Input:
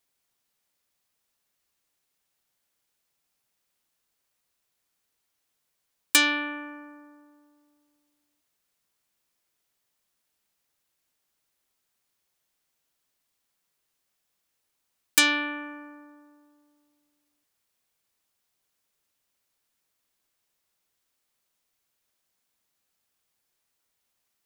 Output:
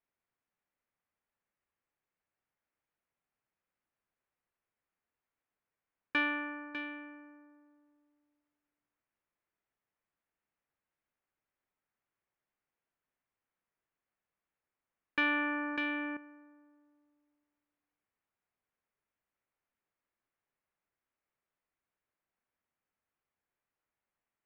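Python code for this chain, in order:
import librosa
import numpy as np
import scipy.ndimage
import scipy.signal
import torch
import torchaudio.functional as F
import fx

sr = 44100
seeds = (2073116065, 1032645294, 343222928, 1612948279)

p1 = scipy.signal.sosfilt(scipy.signal.butter(4, 2300.0, 'lowpass', fs=sr, output='sos'), x)
p2 = p1 + fx.echo_single(p1, sr, ms=599, db=-10.0, dry=0)
p3 = fx.env_flatten(p2, sr, amount_pct=50, at=(15.18, 16.17))
y = p3 * librosa.db_to_amplitude(-6.5)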